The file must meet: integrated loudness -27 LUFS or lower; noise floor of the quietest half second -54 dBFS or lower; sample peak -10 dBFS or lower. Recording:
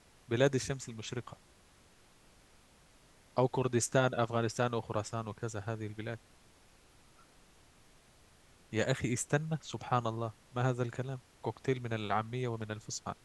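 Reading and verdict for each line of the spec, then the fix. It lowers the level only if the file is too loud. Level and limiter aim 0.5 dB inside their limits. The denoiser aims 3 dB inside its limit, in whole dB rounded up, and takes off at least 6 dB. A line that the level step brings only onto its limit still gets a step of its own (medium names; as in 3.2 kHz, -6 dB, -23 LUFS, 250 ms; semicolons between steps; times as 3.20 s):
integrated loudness -35.0 LUFS: pass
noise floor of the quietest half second -63 dBFS: pass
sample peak -13.0 dBFS: pass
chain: none needed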